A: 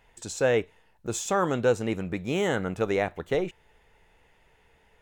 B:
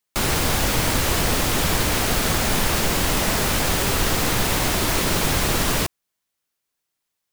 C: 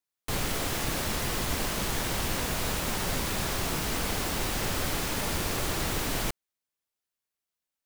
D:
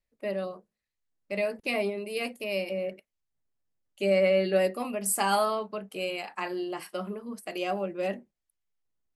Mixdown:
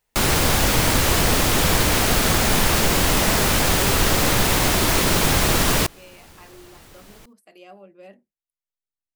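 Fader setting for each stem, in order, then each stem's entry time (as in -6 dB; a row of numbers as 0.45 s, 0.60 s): -17.5 dB, +2.5 dB, -17.5 dB, -14.5 dB; 0.00 s, 0.00 s, 0.95 s, 0.00 s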